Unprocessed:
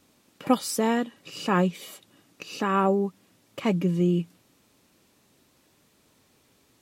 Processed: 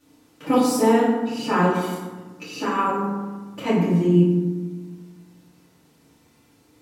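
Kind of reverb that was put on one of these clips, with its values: FDN reverb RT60 1.3 s, low-frequency decay 1.5×, high-frequency decay 0.45×, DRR -10 dB; gain -6 dB

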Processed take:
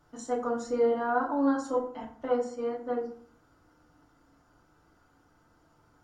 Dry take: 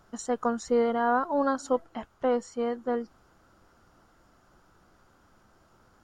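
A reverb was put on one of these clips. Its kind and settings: FDN reverb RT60 0.52 s, low-frequency decay 1.2×, high-frequency decay 0.6×, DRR -4 dB; gain -9 dB

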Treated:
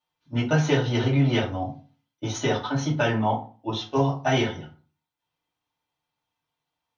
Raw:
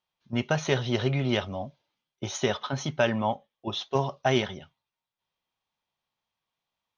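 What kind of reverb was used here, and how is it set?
FDN reverb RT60 0.37 s, low-frequency decay 1.25×, high-frequency decay 0.6×, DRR -6.5 dB; gain -4.5 dB

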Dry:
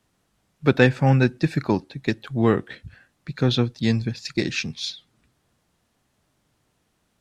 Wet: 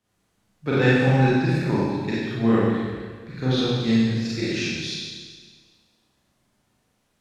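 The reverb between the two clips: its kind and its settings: Schroeder reverb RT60 1.6 s, combs from 31 ms, DRR -9.5 dB; gain -9.5 dB

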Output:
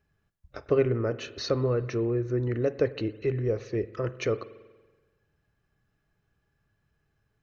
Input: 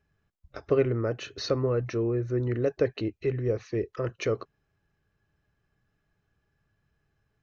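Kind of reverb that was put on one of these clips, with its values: spring tank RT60 1.3 s, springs 47 ms, chirp 80 ms, DRR 15 dB

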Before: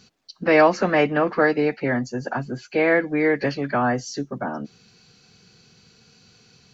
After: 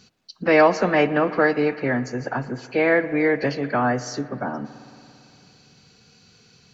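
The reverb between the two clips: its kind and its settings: spring tank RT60 2.8 s, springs 56 ms, chirp 65 ms, DRR 14 dB

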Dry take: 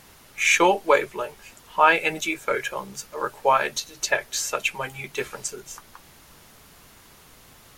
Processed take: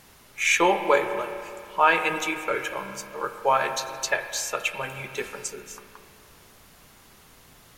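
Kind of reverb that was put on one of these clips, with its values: spring tank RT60 2.4 s, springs 30/35 ms, chirp 80 ms, DRR 7.5 dB; gain -2.5 dB

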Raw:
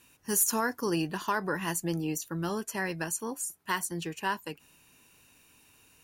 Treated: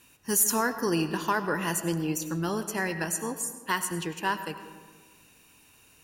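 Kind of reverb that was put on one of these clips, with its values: digital reverb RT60 1.5 s, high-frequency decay 0.5×, pre-delay 55 ms, DRR 10 dB; gain +2.5 dB

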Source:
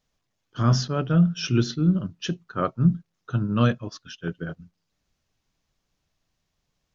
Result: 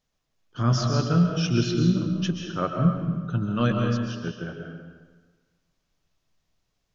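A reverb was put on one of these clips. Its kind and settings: digital reverb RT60 1.4 s, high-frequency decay 0.85×, pre-delay 95 ms, DRR 2 dB; gain -2 dB

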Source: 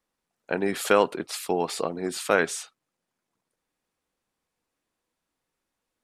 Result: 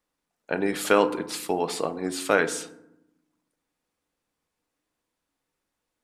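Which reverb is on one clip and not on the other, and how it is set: FDN reverb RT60 0.84 s, low-frequency decay 1.55×, high-frequency decay 0.45×, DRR 10 dB

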